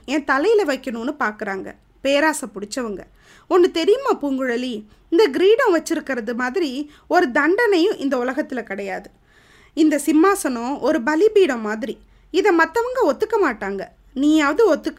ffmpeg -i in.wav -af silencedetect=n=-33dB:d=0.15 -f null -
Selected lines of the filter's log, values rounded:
silence_start: 1.71
silence_end: 2.04 | silence_duration: 0.33
silence_start: 3.03
silence_end: 3.51 | silence_duration: 0.48
silence_start: 4.80
silence_end: 5.12 | silence_duration: 0.32
silence_start: 6.86
silence_end: 7.10 | silence_duration: 0.25
silence_start: 9.07
silence_end: 9.77 | silence_duration: 0.70
silence_start: 11.94
silence_end: 12.34 | silence_duration: 0.40
silence_start: 13.87
silence_end: 14.16 | silence_duration: 0.29